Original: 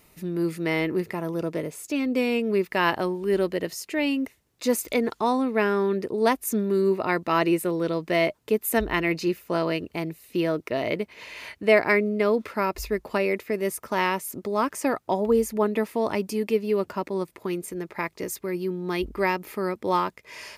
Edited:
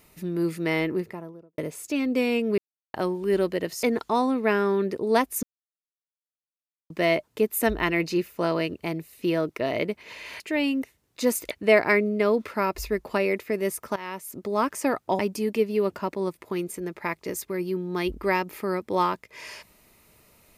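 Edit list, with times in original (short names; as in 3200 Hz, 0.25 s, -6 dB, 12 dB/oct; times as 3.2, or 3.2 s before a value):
0.75–1.58 studio fade out
2.58–2.94 mute
3.83–4.94 move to 11.51
6.54–8.01 mute
13.96–14.54 fade in linear, from -19.5 dB
15.19–16.13 cut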